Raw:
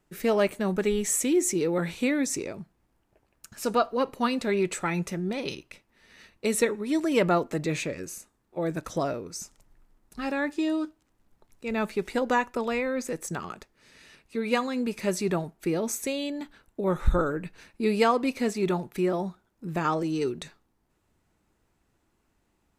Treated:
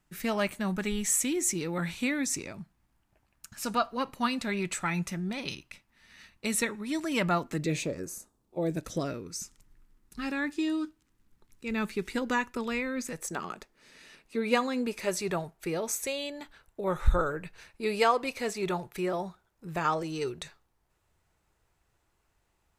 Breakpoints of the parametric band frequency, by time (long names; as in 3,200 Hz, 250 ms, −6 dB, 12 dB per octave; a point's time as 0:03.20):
parametric band −11.5 dB 1.1 octaves
0:07.44 440 Hz
0:08.04 3,200 Hz
0:09.21 650 Hz
0:13.03 650 Hz
0:13.43 81 Hz
0:14.67 81 Hz
0:15.14 250 Hz